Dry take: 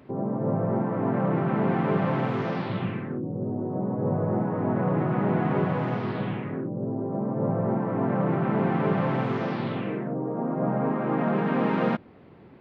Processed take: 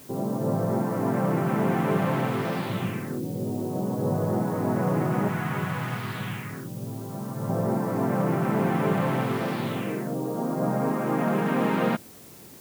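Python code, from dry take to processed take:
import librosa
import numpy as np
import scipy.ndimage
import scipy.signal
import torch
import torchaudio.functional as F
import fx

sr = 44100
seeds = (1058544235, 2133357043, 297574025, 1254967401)

y = fx.curve_eq(x, sr, hz=(120.0, 280.0, 550.0, 1400.0), db=(0, -9, -10, 2), at=(5.28, 7.5))
y = fx.dmg_noise_colour(y, sr, seeds[0], colour='white', level_db=-57.0)
y = fx.high_shelf(y, sr, hz=3700.0, db=8.5)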